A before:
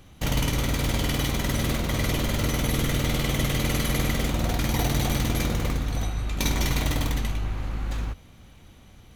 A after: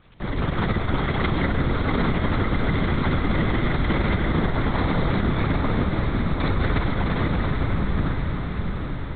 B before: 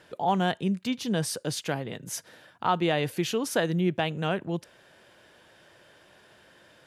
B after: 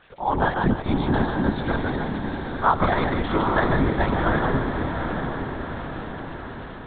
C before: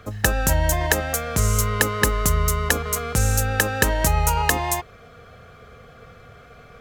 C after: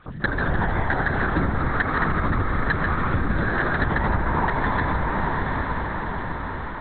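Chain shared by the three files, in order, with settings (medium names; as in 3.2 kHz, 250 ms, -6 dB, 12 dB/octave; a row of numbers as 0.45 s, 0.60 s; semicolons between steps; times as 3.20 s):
boxcar filter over 16 samples; two-band feedback delay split 320 Hz, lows 282 ms, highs 150 ms, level -5.5 dB; ring modulator 86 Hz; peaking EQ 520 Hz -13.5 dB 1.4 oct; crackle 140 per s -46 dBFS; LPC vocoder at 8 kHz whisper; bass shelf 230 Hz -11 dB; level rider gain up to 6 dB; on a send: echo that smears into a reverb 819 ms, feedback 56%, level -6.5 dB; on the sum: compression, threshold -27 dBFS; normalise loudness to -24 LUFS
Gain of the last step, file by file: +10.5 dB, +13.0 dB, +9.0 dB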